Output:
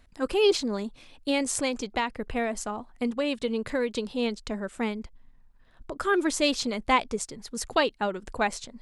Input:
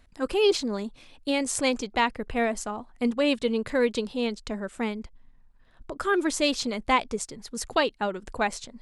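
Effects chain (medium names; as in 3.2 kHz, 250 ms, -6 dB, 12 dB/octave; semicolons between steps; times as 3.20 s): 1.53–4.13 s: compression 4:1, threshold -24 dBFS, peak gain reduction 6 dB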